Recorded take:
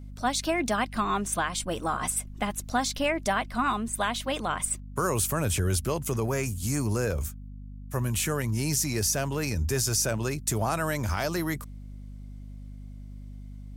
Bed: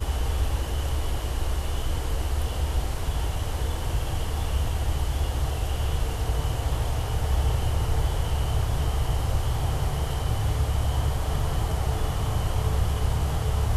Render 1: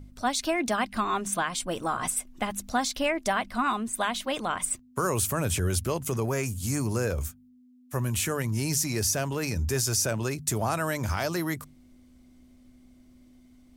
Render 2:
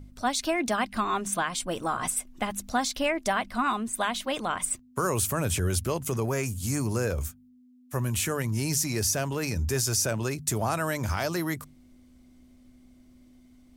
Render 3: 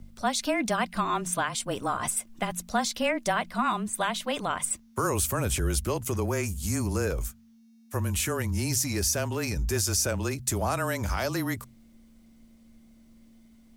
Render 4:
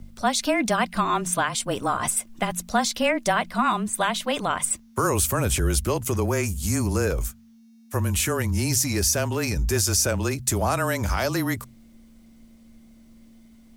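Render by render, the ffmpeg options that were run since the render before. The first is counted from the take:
-af "bandreject=f=50:t=h:w=4,bandreject=f=100:t=h:w=4,bandreject=f=150:t=h:w=4,bandreject=f=200:t=h:w=4"
-af anull
-af "acrusher=bits=11:mix=0:aa=0.000001,afreqshift=-23"
-af "volume=4.5dB"

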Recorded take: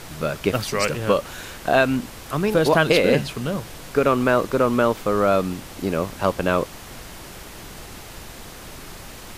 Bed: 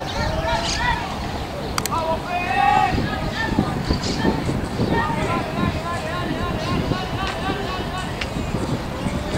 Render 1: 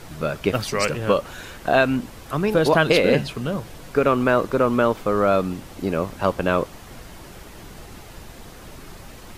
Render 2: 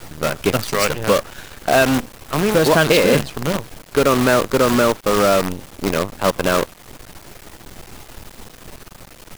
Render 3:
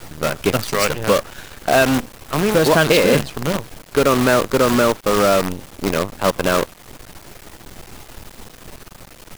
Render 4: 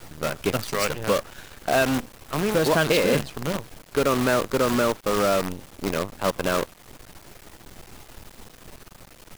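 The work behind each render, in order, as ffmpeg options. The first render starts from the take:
-af "afftdn=nr=6:nf=-40"
-filter_complex "[0:a]asplit=2[a][b];[b]asoftclip=type=tanh:threshold=-15.5dB,volume=-4dB[c];[a][c]amix=inputs=2:normalize=0,acrusher=bits=4:dc=4:mix=0:aa=0.000001"
-af anull
-af "volume=-6.5dB"

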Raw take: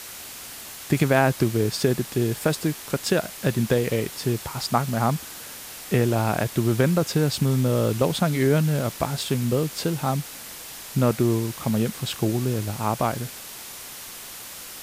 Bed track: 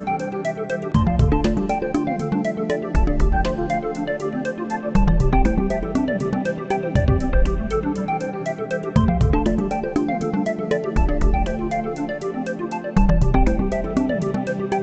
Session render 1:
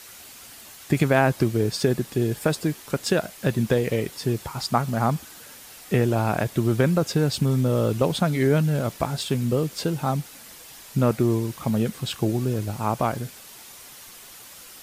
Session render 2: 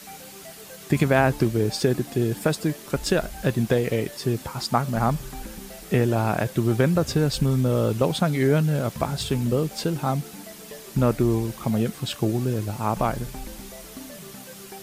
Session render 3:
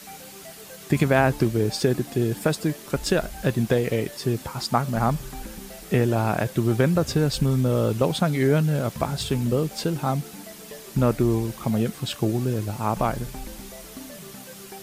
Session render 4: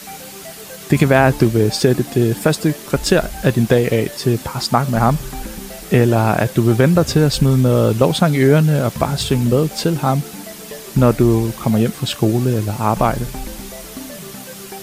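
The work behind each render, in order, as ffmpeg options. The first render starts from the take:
-af "afftdn=nr=7:nf=-39"
-filter_complex "[1:a]volume=-20.5dB[a];[0:a][a]amix=inputs=2:normalize=0"
-af anull
-af "volume=8dB,alimiter=limit=-1dB:level=0:latency=1"

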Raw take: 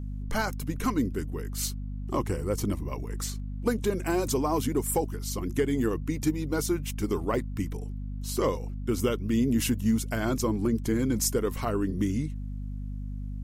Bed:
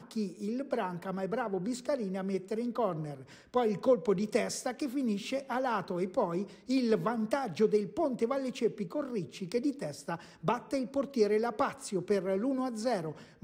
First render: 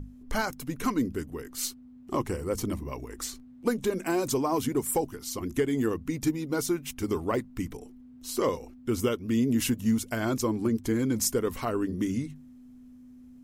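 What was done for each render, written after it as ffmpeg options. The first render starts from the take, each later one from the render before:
-af "bandreject=f=50:t=h:w=6,bandreject=f=100:t=h:w=6,bandreject=f=150:t=h:w=6,bandreject=f=200:t=h:w=6"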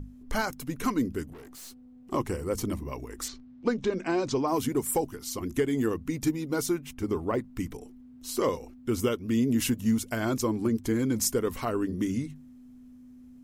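-filter_complex "[0:a]asettb=1/sr,asplit=3[a][b][c];[a]atrim=end=1.334[d];[b]atrim=start=1.33:end=2.12,asetpts=PTS-STARTPTS,afade=t=in:d=0.004:c=qsin,afade=t=out:st=0.786:d=0.004:c=qsin,aeval=exprs='(tanh(158*val(0)+0.25)-tanh(0.25))/158':c=same[e];[c]atrim=start=2.116[f];[d][e]acrossfade=d=0.004:c1=hsin:c2=qsin[g];[g][f]acrossfade=d=0.004:c1=qsin:c2=hsin,asettb=1/sr,asplit=3[h][i][j];[h]atrim=end=3.284[k];[i]atrim=start=3.28:end=4.48,asetpts=PTS-STARTPTS,afade=t=in:d=0.004:c=qsin,afade=t=out:st=1.196:d=0.004:c=qsin,lowpass=f=5.7k:w=0.5412,lowpass=f=5.7k:w=1.3066[l];[j]atrim=start=4.476[m];[k][l]acrossfade=d=0.004:c1=hsin:c2=qsin[n];[n][m]acrossfade=d=0.004:c1=qsin:c2=hsin,asettb=1/sr,asplit=3[o][p][q];[o]atrim=end=6.784[r];[p]atrim=start=6.78:end=7.44,asetpts=PTS-STARTPTS,afade=t=in:d=0.004:c=qsin,afade=t=out:st=0.656:d=0.004:c=qsin,highshelf=f=2.5k:g=-8.5[s];[q]atrim=start=7.436[t];[r][s]acrossfade=d=0.004:c1=hsin:c2=qsin[u];[u][t]acrossfade=d=0.004:c1=qsin:c2=hsin"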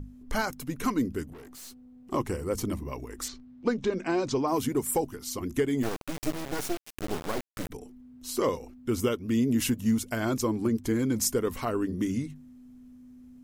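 -filter_complex "[0:a]asplit=3[a][b][c];[a]afade=t=out:st=5.82:d=0.02[d];[b]acrusher=bits=3:dc=4:mix=0:aa=0.000001,afade=t=in:st=5.82:d=0.02,afade=t=out:st=7.69:d=0.02[e];[c]afade=t=in:st=7.69:d=0.02[f];[d][e][f]amix=inputs=3:normalize=0"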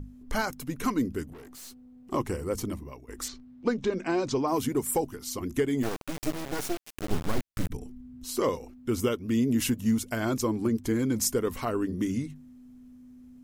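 -filter_complex "[0:a]asplit=3[a][b][c];[a]afade=t=out:st=7.1:d=0.02[d];[b]asubboost=boost=3:cutoff=240,afade=t=in:st=7.1:d=0.02,afade=t=out:st=8.23:d=0.02[e];[c]afade=t=in:st=8.23:d=0.02[f];[d][e][f]amix=inputs=3:normalize=0,asplit=2[g][h];[g]atrim=end=3.08,asetpts=PTS-STARTPTS,afade=t=out:st=2.33:d=0.75:c=qsin:silence=0.177828[i];[h]atrim=start=3.08,asetpts=PTS-STARTPTS,afade=t=in:d=0.004:c=hsin:silence=0.177828[j];[i][j]concat=n=2:v=0:a=1"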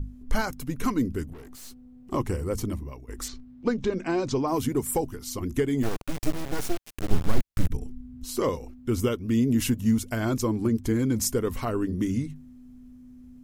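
-af "lowshelf=f=120:g=10.5"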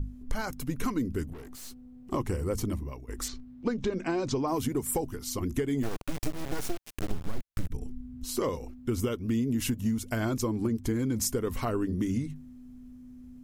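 -af "acompressor=threshold=-25dB:ratio=6"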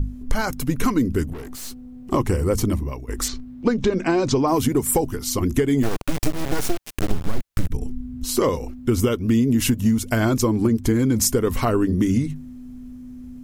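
-af "volume=10dB"

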